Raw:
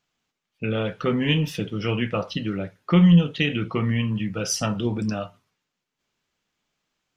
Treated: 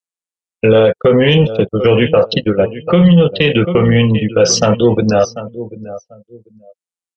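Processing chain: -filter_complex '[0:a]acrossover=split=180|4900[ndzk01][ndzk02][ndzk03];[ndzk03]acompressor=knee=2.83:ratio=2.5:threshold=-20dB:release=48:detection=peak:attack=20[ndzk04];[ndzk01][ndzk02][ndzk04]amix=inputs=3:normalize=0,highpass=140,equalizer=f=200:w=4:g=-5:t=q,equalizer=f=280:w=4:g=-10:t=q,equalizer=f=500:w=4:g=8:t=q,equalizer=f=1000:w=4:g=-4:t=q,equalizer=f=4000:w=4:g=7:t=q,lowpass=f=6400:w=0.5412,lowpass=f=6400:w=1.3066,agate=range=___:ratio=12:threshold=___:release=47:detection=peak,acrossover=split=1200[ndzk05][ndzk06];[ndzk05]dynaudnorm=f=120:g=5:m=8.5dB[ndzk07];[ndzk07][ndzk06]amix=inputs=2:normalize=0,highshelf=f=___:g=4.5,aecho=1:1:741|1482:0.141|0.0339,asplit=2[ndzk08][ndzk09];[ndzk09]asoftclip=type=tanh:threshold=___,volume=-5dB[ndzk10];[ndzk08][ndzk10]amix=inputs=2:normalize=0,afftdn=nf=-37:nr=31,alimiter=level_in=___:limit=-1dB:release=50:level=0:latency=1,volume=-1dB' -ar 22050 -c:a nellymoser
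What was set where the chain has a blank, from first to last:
-59dB, -33dB, 3300, -19.5dB, 8.5dB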